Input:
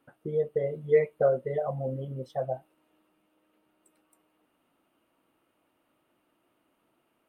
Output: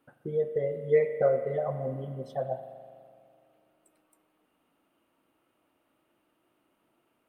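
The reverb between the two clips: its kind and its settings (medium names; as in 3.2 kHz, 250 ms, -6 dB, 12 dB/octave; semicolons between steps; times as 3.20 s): spring tank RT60 2.2 s, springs 41 ms, chirp 20 ms, DRR 8.5 dB; trim -1 dB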